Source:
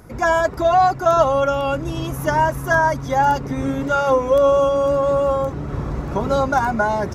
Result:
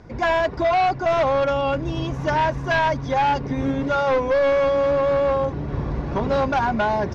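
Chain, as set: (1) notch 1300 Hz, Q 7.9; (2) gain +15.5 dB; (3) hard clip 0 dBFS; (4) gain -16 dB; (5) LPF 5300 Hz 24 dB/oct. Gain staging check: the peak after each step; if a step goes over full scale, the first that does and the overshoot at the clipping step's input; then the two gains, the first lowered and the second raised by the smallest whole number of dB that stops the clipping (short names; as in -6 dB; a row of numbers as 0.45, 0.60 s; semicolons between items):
-5.5, +10.0, 0.0, -16.0, -14.5 dBFS; step 2, 10.0 dB; step 2 +5.5 dB, step 4 -6 dB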